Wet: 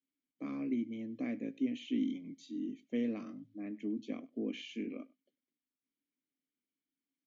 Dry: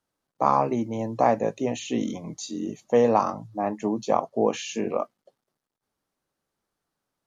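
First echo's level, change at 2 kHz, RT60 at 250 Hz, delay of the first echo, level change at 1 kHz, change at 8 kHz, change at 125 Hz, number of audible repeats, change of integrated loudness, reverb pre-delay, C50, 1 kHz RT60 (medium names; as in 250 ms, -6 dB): -23.5 dB, -12.5 dB, no reverb, 99 ms, -34.5 dB, no reading, -17.5 dB, 1, -13.5 dB, no reverb, no reverb, no reverb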